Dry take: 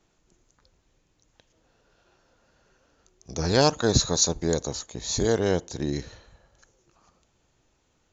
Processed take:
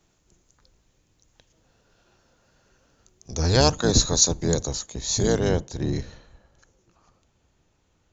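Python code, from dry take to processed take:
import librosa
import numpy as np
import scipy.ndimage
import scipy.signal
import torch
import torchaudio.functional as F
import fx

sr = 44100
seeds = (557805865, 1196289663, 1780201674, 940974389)

y = fx.octave_divider(x, sr, octaves=1, level_db=1.0)
y = fx.high_shelf(y, sr, hz=5100.0, db=fx.steps((0.0, 6.5), (5.48, -3.0)))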